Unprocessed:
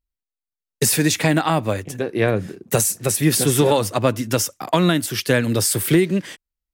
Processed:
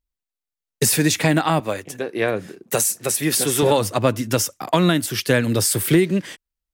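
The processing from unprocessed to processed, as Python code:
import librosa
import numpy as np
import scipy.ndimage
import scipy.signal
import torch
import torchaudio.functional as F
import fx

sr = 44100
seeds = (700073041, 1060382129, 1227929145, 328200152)

y = fx.highpass(x, sr, hz=360.0, slope=6, at=(1.6, 3.63))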